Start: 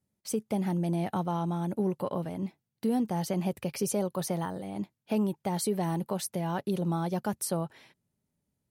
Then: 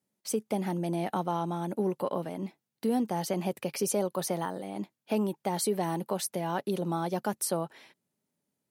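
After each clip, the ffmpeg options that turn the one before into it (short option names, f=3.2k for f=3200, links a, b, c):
-af "highpass=230,volume=2dB"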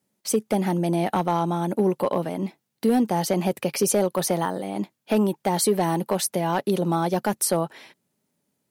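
-af "asoftclip=type=hard:threshold=-21dB,volume=8dB"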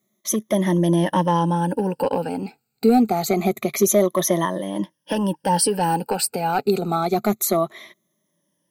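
-af "afftfilt=real='re*pow(10,17/40*sin(2*PI*(1.2*log(max(b,1)*sr/1024/100)/log(2)-(-0.26)*(pts-256)/sr)))':imag='im*pow(10,17/40*sin(2*PI*(1.2*log(max(b,1)*sr/1024/100)/log(2)-(-0.26)*(pts-256)/sr)))':win_size=1024:overlap=0.75"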